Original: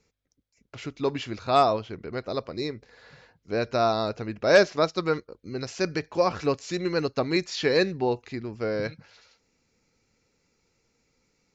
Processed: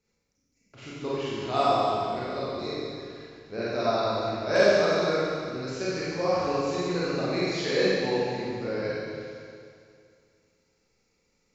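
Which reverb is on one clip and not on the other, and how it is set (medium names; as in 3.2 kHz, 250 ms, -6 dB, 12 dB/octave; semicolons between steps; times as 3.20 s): Schroeder reverb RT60 2.3 s, combs from 31 ms, DRR -9.5 dB; trim -10.5 dB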